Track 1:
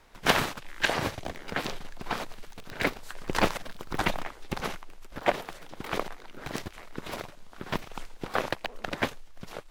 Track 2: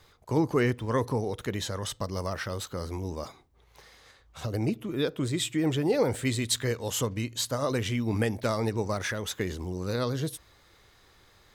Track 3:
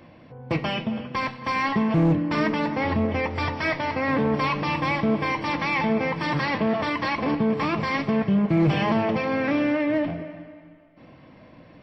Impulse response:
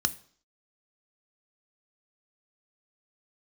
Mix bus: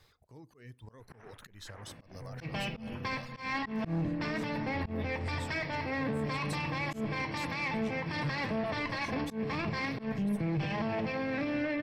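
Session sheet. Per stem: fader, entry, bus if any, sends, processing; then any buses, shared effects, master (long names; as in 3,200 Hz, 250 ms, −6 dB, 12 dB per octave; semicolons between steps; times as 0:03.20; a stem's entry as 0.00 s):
−15.0 dB, 0.85 s, no send, Chebyshev low-pass filter 2,000 Hz, order 3; downward compressor 3 to 1, threshold −33 dBFS, peak gain reduction 12 dB; brickwall limiter −25 dBFS, peak gain reduction 8 dB
−5.5 dB, 0.00 s, send −21 dB, reverb reduction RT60 0.88 s; downward compressor 12 to 1, threshold −38 dBFS, peak gain reduction 18 dB
−4.5 dB, 1.90 s, send −16.5 dB, one-sided soft clipper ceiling −19.5 dBFS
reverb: on, RT60 0.55 s, pre-delay 3 ms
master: volume swells 168 ms; brickwall limiter −25.5 dBFS, peak gain reduction 8 dB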